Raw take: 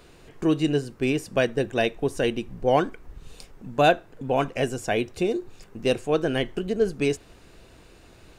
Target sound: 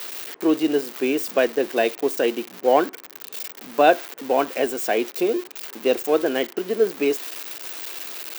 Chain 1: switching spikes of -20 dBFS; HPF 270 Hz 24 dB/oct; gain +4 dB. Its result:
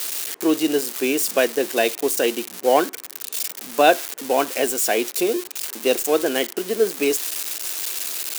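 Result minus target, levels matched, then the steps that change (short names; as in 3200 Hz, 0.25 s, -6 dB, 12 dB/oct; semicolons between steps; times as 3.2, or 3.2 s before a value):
8000 Hz band +10.5 dB
add after HPF: bell 10000 Hz -13.5 dB 2.1 oct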